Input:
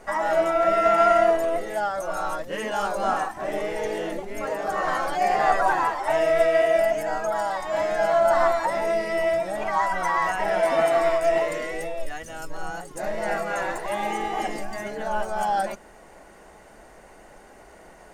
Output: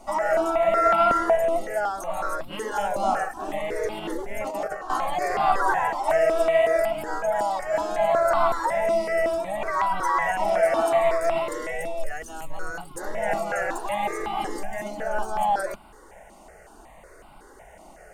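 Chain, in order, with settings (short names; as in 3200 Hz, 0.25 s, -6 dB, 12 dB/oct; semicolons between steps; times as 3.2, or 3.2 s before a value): 3.98–4.9 negative-ratio compressor -29 dBFS, ratio -0.5; step phaser 5.4 Hz 450–1800 Hz; gain +2.5 dB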